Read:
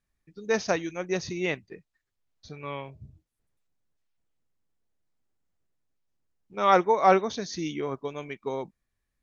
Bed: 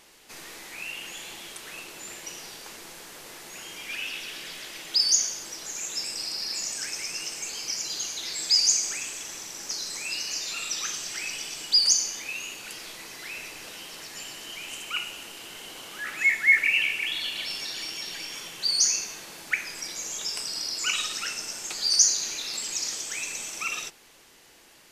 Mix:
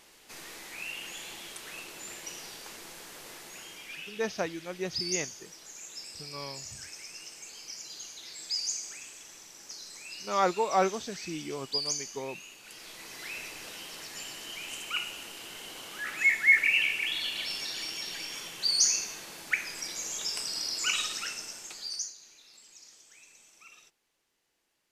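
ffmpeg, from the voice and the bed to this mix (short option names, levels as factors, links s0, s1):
-filter_complex "[0:a]adelay=3700,volume=0.501[s0];[1:a]volume=2.24,afade=t=out:st=3.31:d=0.83:silence=0.354813,afade=t=in:st=12.61:d=0.61:silence=0.334965,afade=t=out:st=20.98:d=1.15:silence=0.0891251[s1];[s0][s1]amix=inputs=2:normalize=0"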